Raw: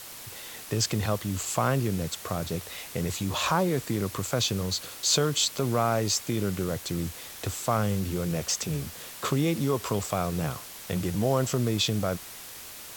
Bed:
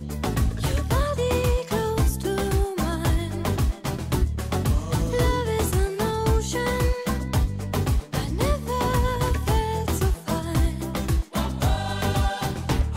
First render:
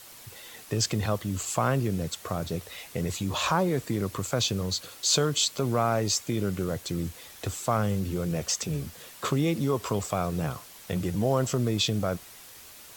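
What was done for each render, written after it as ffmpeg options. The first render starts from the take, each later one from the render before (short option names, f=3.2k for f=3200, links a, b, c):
-af "afftdn=nr=6:nf=-43"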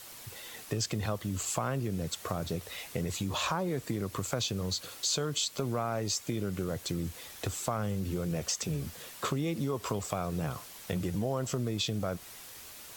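-af "acompressor=threshold=-30dB:ratio=3"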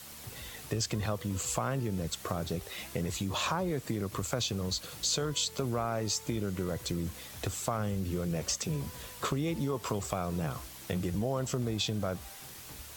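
-filter_complex "[1:a]volume=-28dB[a];[0:a][a]amix=inputs=2:normalize=0"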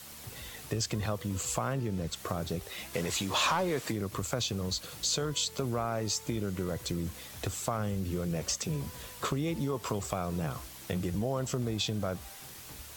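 -filter_complex "[0:a]asettb=1/sr,asplit=3[a][b][c];[a]atrim=end=1.734[d];[b]atrim=start=1.73:end=2.16,asetpts=PTS-STARTPTS,afade=t=in:d=0.004:c=qsin,afade=t=out:st=0.426:d=0.004:c=qsin,equalizer=f=13k:t=o:w=1.3:g=-6[e];[c]atrim=start=2.156[f];[d][e]acrossfade=d=0.004:c1=hsin:c2=qsin[g];[g][f]acrossfade=d=0.004:c1=qsin:c2=hsin,asplit=3[h][i][j];[h]afade=t=out:st=2.93:d=0.02[k];[i]asplit=2[l][m];[m]highpass=f=720:p=1,volume=14dB,asoftclip=type=tanh:threshold=-19dB[n];[l][n]amix=inputs=2:normalize=0,lowpass=f=7k:p=1,volume=-6dB,afade=t=in:st=2.93:d=0.02,afade=t=out:st=3.91:d=0.02[o];[j]afade=t=in:st=3.91:d=0.02[p];[k][o][p]amix=inputs=3:normalize=0"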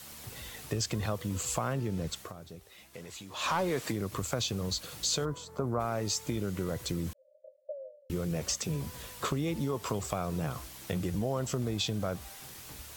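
-filter_complex "[0:a]asplit=3[a][b][c];[a]afade=t=out:st=5.24:d=0.02[d];[b]highshelf=f=1.8k:t=q:w=1.5:g=-14,afade=t=in:st=5.24:d=0.02,afade=t=out:st=5.79:d=0.02[e];[c]afade=t=in:st=5.79:d=0.02[f];[d][e][f]amix=inputs=3:normalize=0,asettb=1/sr,asplit=3[g][h][i];[g]atrim=end=7.134[j];[h]atrim=start=7.13:end=8.1,asetpts=PTS-STARTPTS,afade=t=in:d=0.004:c=qsin,afade=t=out:st=0.966:d=0.004:c=qsin,asuperpass=centerf=570:order=12:qfactor=5.5[k];[i]atrim=start=8.096[l];[j][k]acrossfade=d=0.004:c1=hsin:c2=qsin[m];[m][l]acrossfade=d=0.004:c1=qsin:c2=hsin,asplit=3[n][o][p];[n]atrim=end=2.33,asetpts=PTS-STARTPTS,afade=t=out:st=2.13:d=0.2:silence=0.223872[q];[o]atrim=start=2.33:end=3.36,asetpts=PTS-STARTPTS,volume=-13dB[r];[p]atrim=start=3.36,asetpts=PTS-STARTPTS,afade=t=in:d=0.2:silence=0.223872[s];[q][r][s]concat=n=3:v=0:a=1"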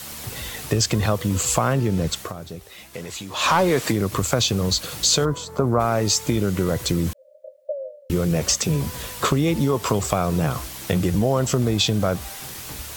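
-af "volume=12dB"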